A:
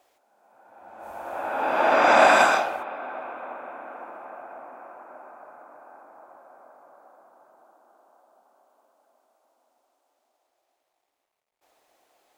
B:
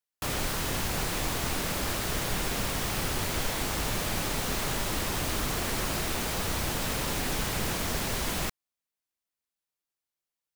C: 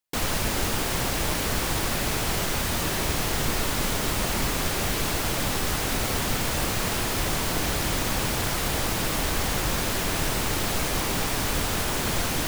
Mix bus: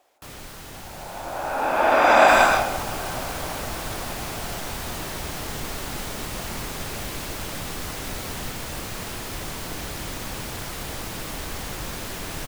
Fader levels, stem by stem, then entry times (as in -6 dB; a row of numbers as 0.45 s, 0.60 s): +1.5 dB, -9.5 dB, -6.5 dB; 0.00 s, 0.00 s, 2.15 s